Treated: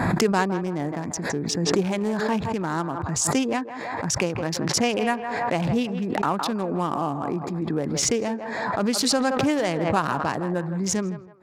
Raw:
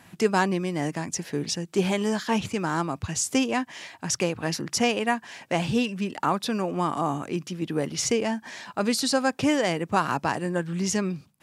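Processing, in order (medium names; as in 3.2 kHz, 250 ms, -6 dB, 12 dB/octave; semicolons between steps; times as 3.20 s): local Wiener filter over 15 samples; band-passed feedback delay 162 ms, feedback 40%, band-pass 870 Hz, level -10 dB; swell ahead of each attack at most 27 dB/s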